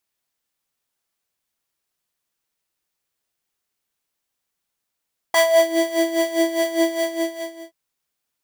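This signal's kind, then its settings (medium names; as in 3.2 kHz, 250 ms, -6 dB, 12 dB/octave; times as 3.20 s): synth patch with tremolo E5, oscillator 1 square, oscillator 2 square, interval -12 st, detune 14 cents, noise -11.5 dB, filter highpass, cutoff 280 Hz, Q 2.8, filter envelope 2 oct, filter decay 0.41 s, filter sustain 5%, attack 4.8 ms, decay 0.33 s, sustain -8 dB, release 0.82 s, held 1.56 s, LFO 4.9 Hz, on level 12.5 dB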